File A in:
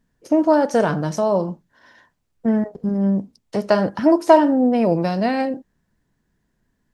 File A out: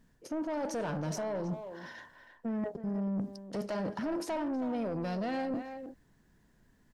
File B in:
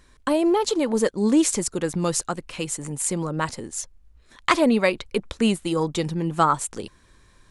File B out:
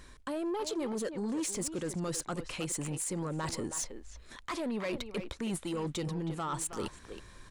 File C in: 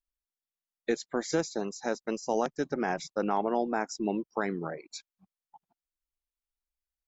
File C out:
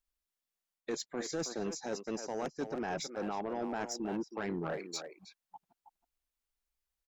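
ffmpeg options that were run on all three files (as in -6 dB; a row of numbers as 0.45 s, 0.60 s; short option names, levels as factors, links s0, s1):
-filter_complex "[0:a]acontrast=83,alimiter=limit=0.266:level=0:latency=1:release=60,areverse,acompressor=threshold=0.0501:ratio=10,areverse,asplit=2[s0][s1];[s1]adelay=320,highpass=300,lowpass=3400,asoftclip=type=hard:threshold=0.0596,volume=0.355[s2];[s0][s2]amix=inputs=2:normalize=0,asoftclip=type=tanh:threshold=0.0631,volume=0.631"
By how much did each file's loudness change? -17.0 LU, -12.5 LU, -6.0 LU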